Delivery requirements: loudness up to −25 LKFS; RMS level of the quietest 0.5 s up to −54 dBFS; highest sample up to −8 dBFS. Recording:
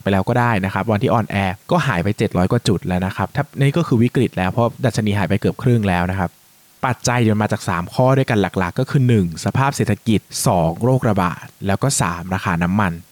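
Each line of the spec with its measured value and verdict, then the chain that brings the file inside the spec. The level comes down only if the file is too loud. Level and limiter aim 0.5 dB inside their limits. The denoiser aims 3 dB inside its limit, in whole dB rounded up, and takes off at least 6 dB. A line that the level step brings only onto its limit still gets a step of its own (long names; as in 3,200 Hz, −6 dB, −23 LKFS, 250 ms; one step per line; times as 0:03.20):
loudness −18.5 LKFS: out of spec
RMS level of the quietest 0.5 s −51 dBFS: out of spec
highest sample −5.5 dBFS: out of spec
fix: level −7 dB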